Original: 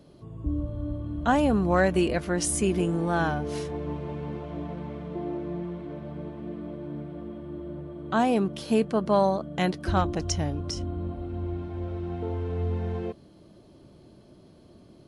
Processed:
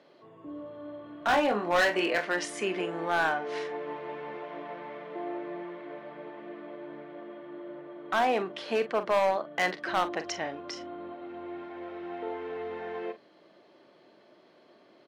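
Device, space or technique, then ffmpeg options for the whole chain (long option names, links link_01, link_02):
megaphone: -filter_complex "[0:a]highpass=frequency=91:width=0.5412,highpass=frequency=91:width=1.3066,asettb=1/sr,asplit=3[link_01][link_02][link_03];[link_01]atrim=end=1.264[link_04];[link_02]atrim=start=1.26:end=2.25,asetpts=PTS-STARTPTS,afade=type=in:duration=0.004:curve=qsin,afade=type=out:start_time=0.986:duration=0.004:curve=qsin,asplit=2[link_05][link_06];[link_06]adelay=24,volume=-5dB[link_07];[link_05][link_07]amix=inputs=2:normalize=0,atrim=end_sample=43659[link_08];[link_03]atrim=start=2.246[link_09];[link_04][link_08]acrossfade=duration=0.004:curve1=hsin:curve2=qsin[link_10];[link_10][link_09]acrossfade=duration=0.004:curve1=qsin:curve2=hsin,highpass=530,lowpass=3600,equalizer=frequency=1900:width_type=o:width=0.52:gain=7,asoftclip=type=hard:threshold=-22dB,asplit=2[link_11][link_12];[link_12]adelay=43,volume=-11.5dB[link_13];[link_11][link_13]amix=inputs=2:normalize=0,volume=2dB"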